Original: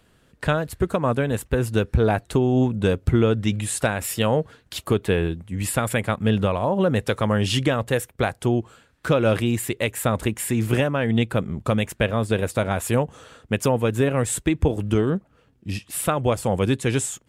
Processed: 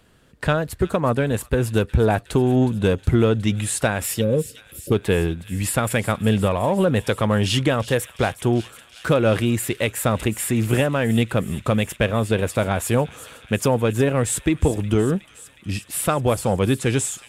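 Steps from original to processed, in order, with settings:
time-frequency box erased 0:04.21–0:04.92, 600–10,000 Hz
in parallel at −9 dB: soft clipping −21 dBFS, distortion −9 dB
on the sum: delay with a high-pass on its return 365 ms, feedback 75%, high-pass 2,500 Hz, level −13.5 dB

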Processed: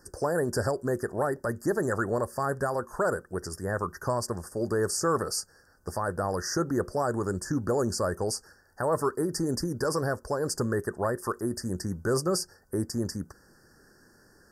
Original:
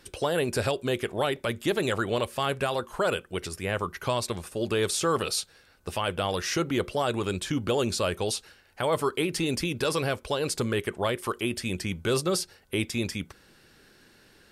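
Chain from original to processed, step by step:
Chebyshev band-stop filter 1,800–4,700 Hz, order 5

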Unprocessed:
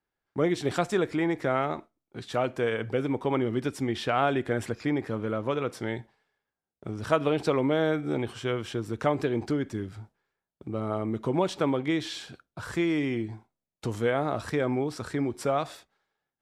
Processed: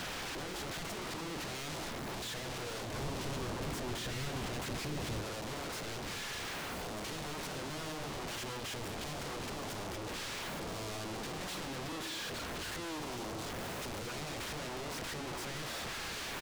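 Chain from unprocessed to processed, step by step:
sign of each sample alone
high-pass filter 91 Hz 12 dB per octave
single-tap delay 210 ms −16.5 dB
speech leveller
low-pass filter 1,300 Hz 6 dB per octave
mains-hum notches 60/120/180/240/300/360/420/480 Hz
wave folding −37.5 dBFS
0:02.94–0:05.22: low-shelf EQ 260 Hz +7 dB
level +1.5 dB

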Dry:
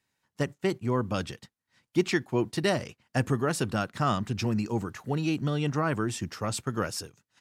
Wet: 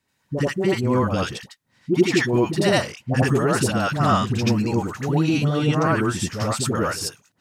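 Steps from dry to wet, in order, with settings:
all-pass dispersion highs, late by 83 ms, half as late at 690 Hz
backwards echo 83 ms −4.5 dB
level +7 dB

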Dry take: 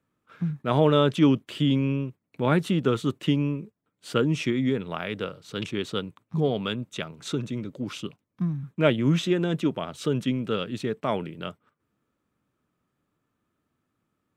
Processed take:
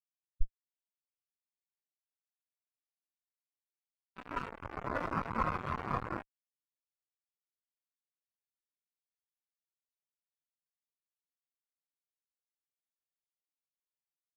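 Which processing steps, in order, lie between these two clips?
feedback delay with all-pass diffusion 1,472 ms, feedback 43%, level −4 dB
in parallel at −1.5 dB: downward compressor 8 to 1, threshold −31 dBFS, peak gain reduction 16.5 dB
on the sum: full-wave rectification
0:04.15–0:06.21: noise in a band 950–1,500 Hz −33 dBFS
comparator with hysteresis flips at −33 dBFS
every bin expanded away from the loudest bin 2.5 to 1

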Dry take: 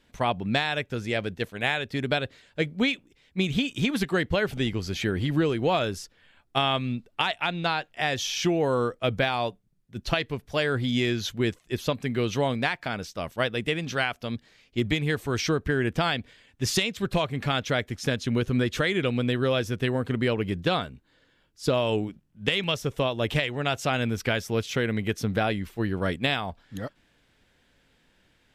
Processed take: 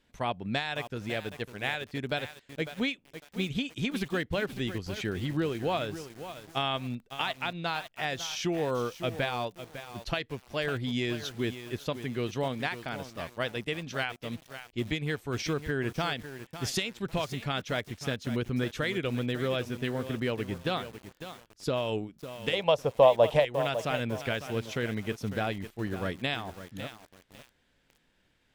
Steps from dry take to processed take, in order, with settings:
transient designer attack −1 dB, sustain −5 dB
0:22.53–0:23.45: flat-topped bell 700 Hz +15 dB 1.3 octaves
feedback echo at a low word length 552 ms, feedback 35%, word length 6 bits, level −10.5 dB
level −5.5 dB

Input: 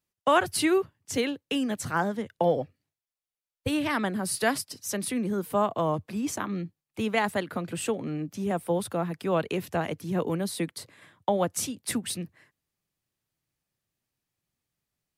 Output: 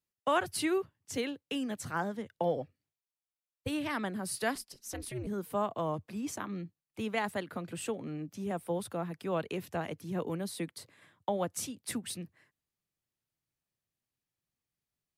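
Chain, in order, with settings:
0:04.55–0:05.27: ring modulation 120 Hz
level −7 dB

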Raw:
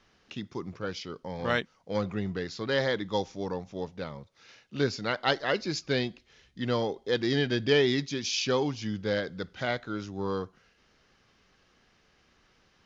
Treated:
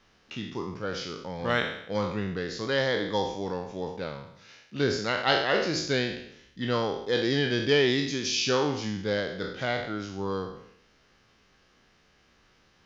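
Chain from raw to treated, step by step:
peak hold with a decay on every bin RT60 0.73 s

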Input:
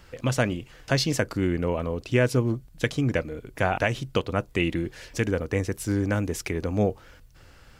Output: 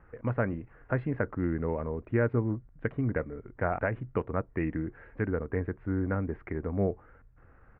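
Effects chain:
Butterworth low-pass 2,000 Hz 36 dB per octave
pitch shifter −1 semitone
level −5 dB

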